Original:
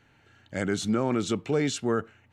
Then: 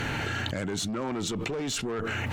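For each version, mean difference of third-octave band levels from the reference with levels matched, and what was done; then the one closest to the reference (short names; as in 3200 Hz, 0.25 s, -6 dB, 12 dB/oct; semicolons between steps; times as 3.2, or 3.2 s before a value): 12.5 dB: tube stage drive 25 dB, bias 0.35; fast leveller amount 100%; gain -3.5 dB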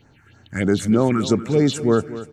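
4.5 dB: phaser stages 4, 3.2 Hz, lowest notch 520–3100 Hz; on a send: feedback echo 0.24 s, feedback 42%, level -14.5 dB; on the sum: gain +9 dB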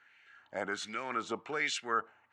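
6.0 dB: bell 7600 Hz +8 dB 2 oct; LFO band-pass sine 1.3 Hz 860–2200 Hz; gain +4 dB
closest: second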